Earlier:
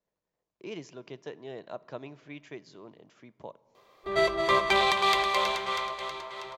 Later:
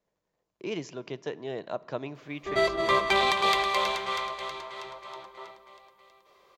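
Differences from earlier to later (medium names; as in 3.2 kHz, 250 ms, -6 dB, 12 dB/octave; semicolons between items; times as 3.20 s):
speech +6.0 dB; background: entry -1.60 s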